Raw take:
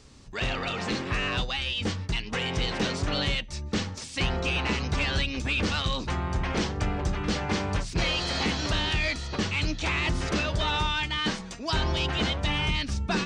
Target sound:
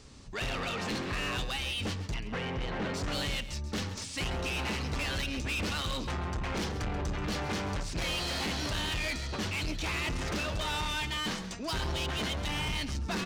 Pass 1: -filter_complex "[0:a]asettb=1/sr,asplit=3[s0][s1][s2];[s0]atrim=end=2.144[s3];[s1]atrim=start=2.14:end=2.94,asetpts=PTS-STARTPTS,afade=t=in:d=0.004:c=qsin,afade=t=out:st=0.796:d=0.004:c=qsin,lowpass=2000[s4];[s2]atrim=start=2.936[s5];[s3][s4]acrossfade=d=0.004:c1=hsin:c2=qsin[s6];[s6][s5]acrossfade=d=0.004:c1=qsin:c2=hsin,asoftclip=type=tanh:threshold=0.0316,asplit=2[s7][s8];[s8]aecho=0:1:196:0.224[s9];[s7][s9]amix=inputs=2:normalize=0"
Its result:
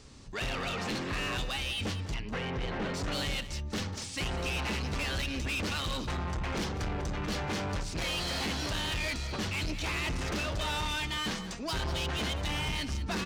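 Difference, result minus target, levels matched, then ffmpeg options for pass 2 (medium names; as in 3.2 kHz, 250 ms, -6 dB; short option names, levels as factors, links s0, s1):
echo 62 ms late
-filter_complex "[0:a]asettb=1/sr,asplit=3[s0][s1][s2];[s0]atrim=end=2.144[s3];[s1]atrim=start=2.14:end=2.94,asetpts=PTS-STARTPTS,afade=t=in:d=0.004:c=qsin,afade=t=out:st=0.796:d=0.004:c=qsin,lowpass=2000[s4];[s2]atrim=start=2.936[s5];[s3][s4]acrossfade=d=0.004:c1=hsin:c2=qsin[s6];[s6][s5]acrossfade=d=0.004:c1=qsin:c2=hsin,asoftclip=type=tanh:threshold=0.0316,asplit=2[s7][s8];[s8]aecho=0:1:134:0.224[s9];[s7][s9]amix=inputs=2:normalize=0"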